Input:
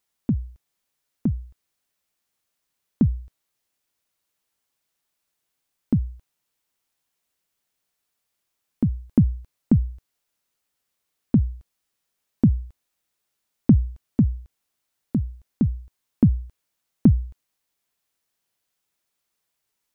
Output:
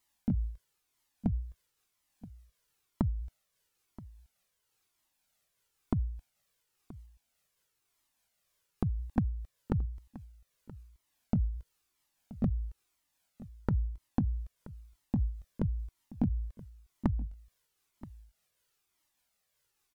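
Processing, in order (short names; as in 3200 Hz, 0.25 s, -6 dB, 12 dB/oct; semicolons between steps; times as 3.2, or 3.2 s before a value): repeated pitch sweeps -2.5 st, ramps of 0.642 s; compressor 10:1, threshold -28 dBFS, peak gain reduction 17 dB; echo 0.977 s -18.5 dB; cascading flanger falling 1 Hz; gain +6 dB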